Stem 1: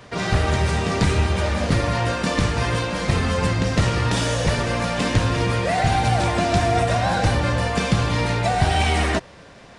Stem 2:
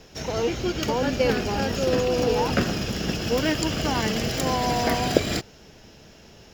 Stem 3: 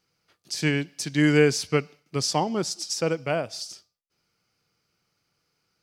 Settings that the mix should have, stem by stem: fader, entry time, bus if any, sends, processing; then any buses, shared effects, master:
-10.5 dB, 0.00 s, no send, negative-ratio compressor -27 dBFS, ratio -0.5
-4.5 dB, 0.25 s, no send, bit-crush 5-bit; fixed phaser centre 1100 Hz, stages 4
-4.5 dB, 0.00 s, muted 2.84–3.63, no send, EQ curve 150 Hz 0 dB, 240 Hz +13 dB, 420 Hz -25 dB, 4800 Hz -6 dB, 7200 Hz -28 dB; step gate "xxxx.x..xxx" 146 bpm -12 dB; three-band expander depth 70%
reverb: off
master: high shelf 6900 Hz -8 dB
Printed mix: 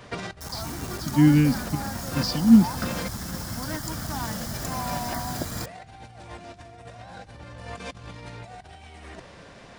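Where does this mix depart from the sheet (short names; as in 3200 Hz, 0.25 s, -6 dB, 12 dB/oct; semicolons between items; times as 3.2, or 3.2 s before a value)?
stem 3 -4.5 dB -> +2.0 dB; master: missing high shelf 6900 Hz -8 dB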